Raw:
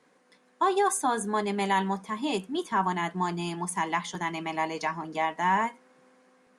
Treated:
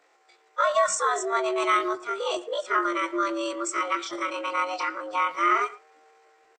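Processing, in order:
partials spread apart or drawn together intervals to 78%
pitch shifter +10 semitones
far-end echo of a speakerphone 110 ms, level −19 dB
level +3.5 dB

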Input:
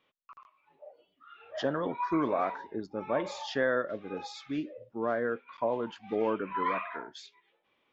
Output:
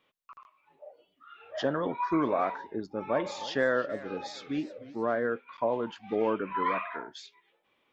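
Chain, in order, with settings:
0:02.73–0:05.27: feedback echo with a swinging delay time 312 ms, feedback 43%, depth 165 cents, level −17.5 dB
level +1.5 dB

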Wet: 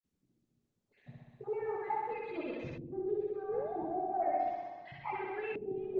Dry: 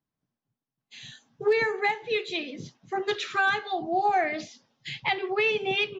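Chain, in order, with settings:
time-frequency cells dropped at random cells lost 45%
hum removal 50.53 Hz, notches 22
reversed playback
downward compressor 8 to 1, threshold −41 dBFS, peak gain reduction 21 dB
reversed playback
flutter between parallel walls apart 10.9 metres, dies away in 1.4 s
in parallel at −4.5 dB: soft clipping −39 dBFS, distortion −13 dB
on the sum: sound drawn into the spectrogram rise, 0:03.48–0:03.85, 400–980 Hz −44 dBFS
auto-filter low-pass saw up 0.36 Hz 290–1,600 Hz
Opus 16 kbit/s 48,000 Hz

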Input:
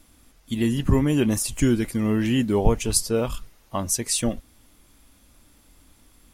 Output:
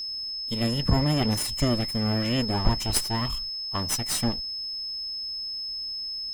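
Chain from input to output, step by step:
lower of the sound and its delayed copy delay 1 ms
steady tone 5,200 Hz −28 dBFS
level −2.5 dB

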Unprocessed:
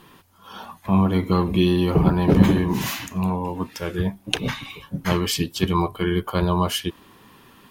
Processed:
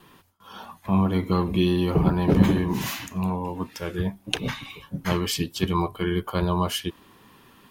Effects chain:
noise gate with hold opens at −45 dBFS
level −3 dB

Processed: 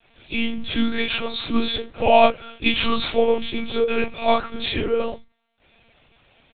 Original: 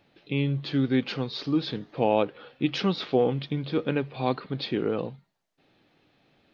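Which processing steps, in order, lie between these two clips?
tilt shelving filter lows −4.5 dB, about 840 Hz
comb filter 6.1 ms, depth 53%
convolution reverb, pre-delay 3 ms, DRR −12 dB
one-pitch LPC vocoder at 8 kHz 230 Hz
level −8.5 dB

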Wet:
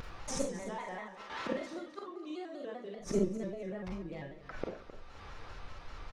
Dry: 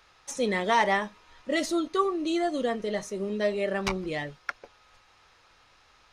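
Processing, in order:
0:00.70–0:02.95: meter weighting curve A
noise gate with hold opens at −46 dBFS
spectral tilt −3 dB per octave
downward compressor, threshold −26 dBFS, peak gain reduction 8 dB
volume swells 173 ms
upward compression, threshold −49 dBFS
gate with flip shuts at −35 dBFS, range −28 dB
repeating echo 258 ms, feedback 27%, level −14 dB
four-comb reverb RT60 0.44 s, combs from 31 ms, DRR 0.5 dB
pitch modulation by a square or saw wave square 5.1 Hz, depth 100 cents
level +13.5 dB

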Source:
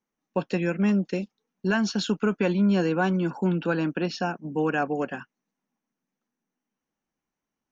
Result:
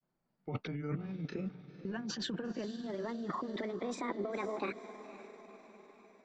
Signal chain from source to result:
gliding playback speed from 73% → 174%
low-pass filter 5,700 Hz 12 dB per octave
high-shelf EQ 2,100 Hz −11 dB
brickwall limiter −24.5 dBFS, peak gain reduction 10.5 dB
compressor whose output falls as the input rises −37 dBFS, ratio −1
feedback delay with all-pass diffusion 507 ms, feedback 54%, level −13 dB
granular cloud 100 ms, spray 20 ms, pitch spread up and down by 0 semitones

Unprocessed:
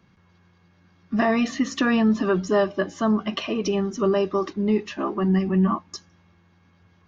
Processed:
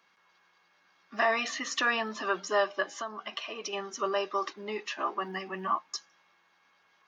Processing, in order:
high-pass filter 790 Hz 12 dB per octave
0:02.96–0:03.73: downward compressor 4 to 1, threshold −35 dBFS, peak gain reduction 10 dB

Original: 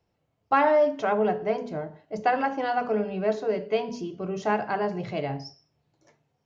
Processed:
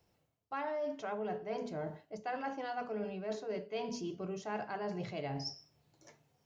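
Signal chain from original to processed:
high-shelf EQ 5,000 Hz +9.5 dB
reversed playback
downward compressor 6 to 1, threshold −37 dBFS, peak gain reduction 20 dB
reversed playback

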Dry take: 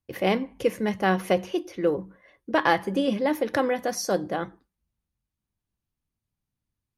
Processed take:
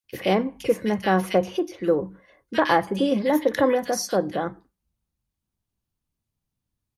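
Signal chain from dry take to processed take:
0:03.28–0:03.71: EQ curve with evenly spaced ripples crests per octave 1.1, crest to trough 7 dB
multiband delay without the direct sound highs, lows 40 ms, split 1,900 Hz
level +2.5 dB

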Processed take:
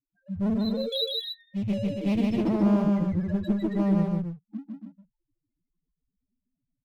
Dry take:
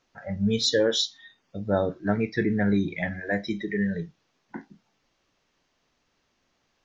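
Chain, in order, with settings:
spectral peaks only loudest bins 1
drawn EQ curve 310 Hz 0 dB, 470 Hz −18 dB, 840 Hz −14 dB
leveller curve on the samples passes 1
automatic gain control gain up to 11 dB
asymmetric clip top −25.5 dBFS, bottom −17.5 dBFS
0:00.92–0:02.34: high shelf with overshoot 1,900 Hz +10 dB, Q 3
loudspeakers that aren't time-aligned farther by 52 metres −2 dB, 96 metres −7 dB
level −1.5 dB

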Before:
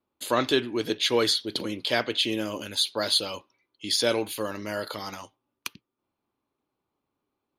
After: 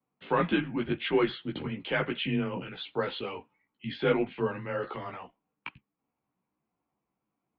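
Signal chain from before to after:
multi-voice chorus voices 4, 0.92 Hz, delay 16 ms, depth 3 ms
single-sideband voice off tune −86 Hz 160–2,800 Hz
level +1.5 dB

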